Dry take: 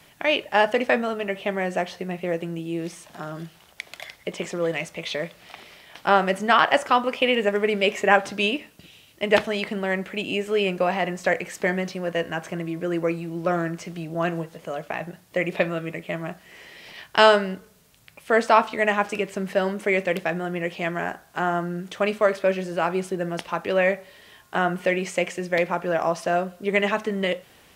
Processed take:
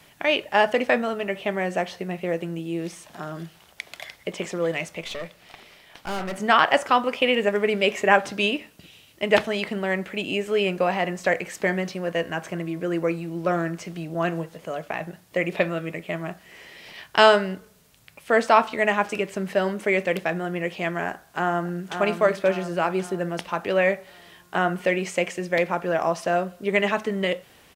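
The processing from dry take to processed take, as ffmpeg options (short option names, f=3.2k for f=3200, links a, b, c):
-filter_complex "[0:a]asettb=1/sr,asplit=3[a][b][c];[a]atrim=end=5.014[d];[b]atrim=start=5.01:end=6.38,asetpts=PTS-STARTPTS,afade=t=in:d=0.004:c=qsin,afade=t=out:st=1.366:d=0.004:c=qsin,aeval=exprs='(tanh(22.4*val(0)+0.6)-tanh(0.6))/22.4':c=same[e];[c]atrim=start=6.376[f];[d][e]acrossfade=d=0.004:c1=hsin:c2=qsin[g];[g][f]acrossfade=d=0.004:c1=qsin:c2=hsin,asplit=2[h][i];[i]afade=t=in:st=21.11:d=0.01,afade=t=out:st=21.94:d=0.01,aecho=0:1:540|1080|1620|2160|2700|3240:0.446684|0.223342|0.111671|0.0558354|0.0279177|0.0139589[j];[h][j]amix=inputs=2:normalize=0"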